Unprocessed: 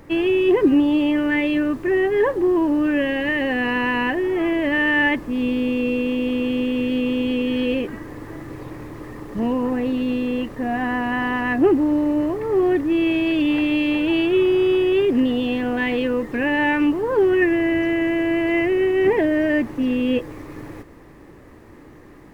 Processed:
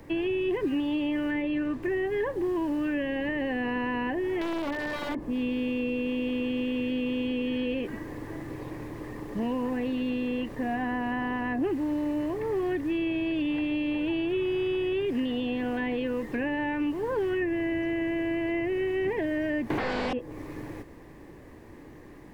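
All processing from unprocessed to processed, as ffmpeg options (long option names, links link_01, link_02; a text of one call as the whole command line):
ffmpeg -i in.wav -filter_complex "[0:a]asettb=1/sr,asplit=3[link_01][link_02][link_03];[link_01]atrim=end=1.424[link_04];[link_02]atrim=start=1.42:end=1.83,asetpts=PTS-STARTPTS,afade=type=in:duration=0.004:curve=qsin,afade=type=out:start_time=0.406:duration=0.004:curve=qsin,lowpass=frequency=3000:poles=1,asplit=2[link_05][link_06];[link_06]adelay=16,volume=-12dB[link_07];[link_05][link_07]amix=inputs=2:normalize=0,atrim=end_sample=18081[link_08];[link_03]atrim=start=1.826[link_09];[link_04][link_08]acrossfade=duration=0.004:curve1=hsin:curve2=qsin[link_10];[link_10][link_09]acrossfade=duration=0.004:curve1=qsin:curve2=hsin,asettb=1/sr,asplit=3[link_11][link_12][link_13];[link_11]atrim=end=4.414[link_14];[link_12]atrim=start=4.41:end=5.18,asetpts=PTS-STARTPTS,afade=type=in:duration=0.004:curve=qsin,afade=type=out:start_time=0.766:duration=0.004:curve=qsin,highpass=100,lowpass=2300,bandreject=frequency=50:width_type=h:width=6,bandreject=frequency=100:width_type=h:width=6,bandreject=frequency=150:width_type=h:width=6,bandreject=frequency=200:width_type=h:width=6,bandreject=frequency=250:width_type=h:width=6,bandreject=frequency=300:width_type=h:width=6,aeval=exprs='(mod(5.96*val(0)+1,2)-1)/5.96':channel_layout=same[link_15];[link_13]atrim=start=5.176[link_16];[link_14][link_15]acrossfade=duration=0.004:curve1=hsin:curve2=qsin[link_17];[link_17][link_16]acrossfade=duration=0.004:curve1=qsin:curve2=hsin,asettb=1/sr,asplit=3[link_18][link_19][link_20];[link_18]atrim=end=19.704[link_21];[link_19]atrim=start=19.7:end=20.13,asetpts=PTS-STARTPTS,afade=type=in:duration=0.004:curve=qsin,afade=type=out:start_time=0.426:duration=0.004:curve=qsin,acrossover=split=3800[link_22][link_23];[link_23]acompressor=threshold=-52dB:ratio=4:attack=1:release=60[link_24];[link_22][link_24]amix=inputs=2:normalize=0,lowshelf=frequency=260:gain=-3,aeval=exprs='0.251*sin(PI/2*8.91*val(0)/0.251)':channel_layout=same[link_25];[link_20]atrim=start=20.126[link_26];[link_21][link_25]acrossfade=duration=0.004:curve1=hsin:curve2=qsin[link_27];[link_27][link_26]acrossfade=duration=0.004:curve1=qsin:curve2=hsin,acrossover=split=180|1200[link_28][link_29][link_30];[link_28]acompressor=threshold=-37dB:ratio=4[link_31];[link_29]acompressor=threshold=-26dB:ratio=4[link_32];[link_30]acompressor=threshold=-35dB:ratio=4[link_33];[link_31][link_32][link_33]amix=inputs=3:normalize=0,equalizer=frequency=1300:width=7.4:gain=-8.5,acrossover=split=3900[link_34][link_35];[link_35]acompressor=threshold=-53dB:ratio=4:attack=1:release=60[link_36];[link_34][link_36]amix=inputs=2:normalize=0,volume=-3dB" out.wav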